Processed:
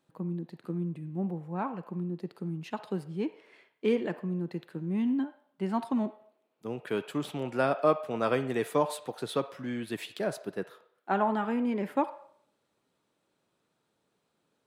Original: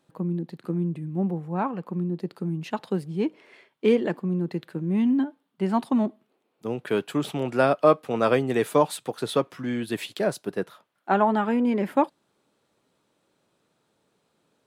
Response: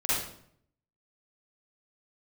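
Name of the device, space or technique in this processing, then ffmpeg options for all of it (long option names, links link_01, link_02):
filtered reverb send: -filter_complex "[0:a]asplit=2[link_01][link_02];[link_02]highpass=frequency=530:width=0.5412,highpass=frequency=530:width=1.3066,lowpass=3600[link_03];[1:a]atrim=start_sample=2205[link_04];[link_03][link_04]afir=irnorm=-1:irlink=0,volume=-20.5dB[link_05];[link_01][link_05]amix=inputs=2:normalize=0,volume=-6.5dB"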